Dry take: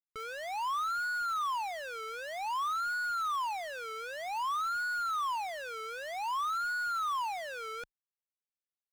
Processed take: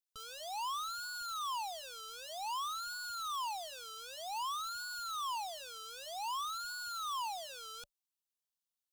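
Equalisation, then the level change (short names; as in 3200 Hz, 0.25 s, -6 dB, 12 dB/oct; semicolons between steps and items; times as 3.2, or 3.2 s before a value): resonant high shelf 2200 Hz +7 dB, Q 3; notch 580 Hz, Q 16; fixed phaser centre 910 Hz, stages 4; -3.0 dB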